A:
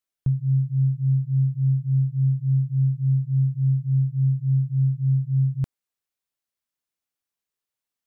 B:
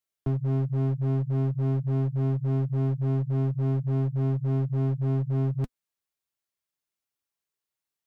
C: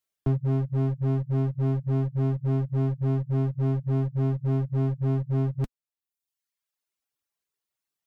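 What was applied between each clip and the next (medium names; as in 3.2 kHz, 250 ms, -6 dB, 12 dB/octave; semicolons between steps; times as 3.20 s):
one-sided wavefolder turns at -24 dBFS; comb of notches 250 Hz
reverb removal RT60 1 s; trim +3 dB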